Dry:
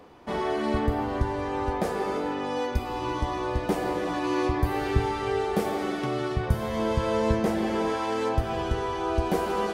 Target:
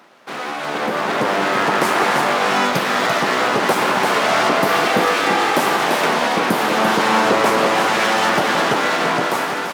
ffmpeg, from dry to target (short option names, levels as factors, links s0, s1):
-filter_complex "[0:a]aeval=exprs='abs(val(0))':c=same,highpass=f=180:w=0.5412,highpass=f=180:w=1.3066,lowshelf=f=430:g=-4.5,aecho=1:1:341:0.501,asplit=2[s0][s1];[s1]alimiter=level_in=1.26:limit=0.0631:level=0:latency=1:release=87,volume=0.794,volume=1.41[s2];[s0][s2]amix=inputs=2:normalize=0,dynaudnorm=f=230:g=9:m=3.76"